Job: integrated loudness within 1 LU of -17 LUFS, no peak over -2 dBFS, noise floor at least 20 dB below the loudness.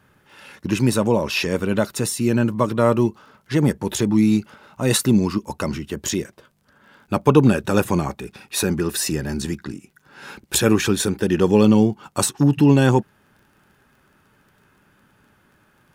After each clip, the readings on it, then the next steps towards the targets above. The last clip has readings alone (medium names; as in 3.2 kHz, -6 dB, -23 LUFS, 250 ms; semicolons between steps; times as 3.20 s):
tick rate 23 per s; loudness -19.5 LUFS; peak level -2.0 dBFS; loudness target -17.0 LUFS
-> de-click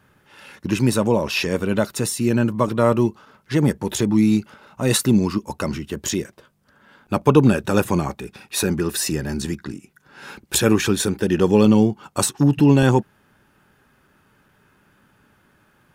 tick rate 0.063 per s; loudness -19.5 LUFS; peak level -2.0 dBFS; loudness target -17.0 LUFS
-> trim +2.5 dB; peak limiter -2 dBFS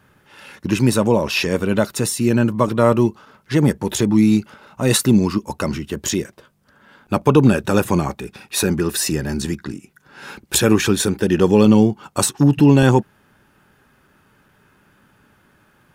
loudness -17.5 LUFS; peak level -2.0 dBFS; noise floor -58 dBFS